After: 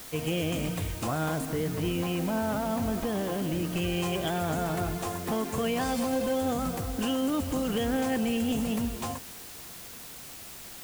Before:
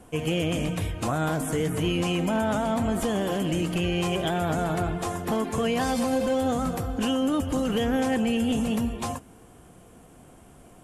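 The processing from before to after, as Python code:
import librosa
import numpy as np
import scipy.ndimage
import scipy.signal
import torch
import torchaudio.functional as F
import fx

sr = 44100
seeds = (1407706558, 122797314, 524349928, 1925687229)

y = fx.air_absorb(x, sr, metres=230.0, at=(1.45, 3.75))
y = fx.dmg_noise_colour(y, sr, seeds[0], colour='white', level_db=-41.0)
y = y * librosa.db_to_amplitude(-3.5)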